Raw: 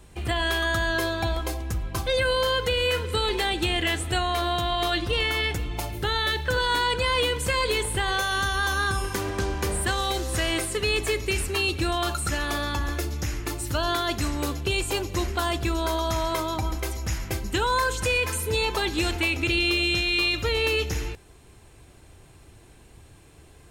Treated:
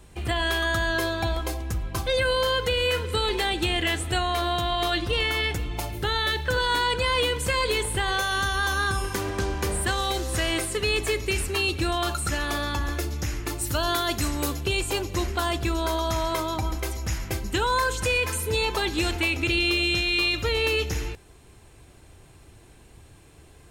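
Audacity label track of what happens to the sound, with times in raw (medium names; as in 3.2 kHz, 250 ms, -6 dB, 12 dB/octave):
13.610000	14.660000	treble shelf 7.9 kHz +8.5 dB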